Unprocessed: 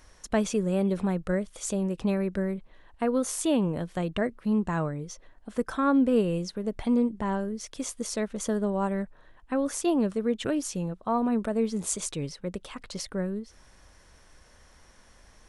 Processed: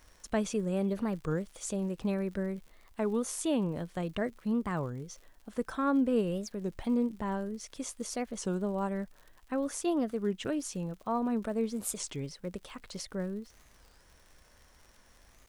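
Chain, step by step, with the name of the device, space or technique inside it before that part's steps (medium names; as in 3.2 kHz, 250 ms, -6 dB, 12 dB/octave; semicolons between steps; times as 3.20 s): warped LP (warped record 33 1/3 rpm, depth 250 cents; crackle 94 per s -41 dBFS; white noise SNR 43 dB); trim -5 dB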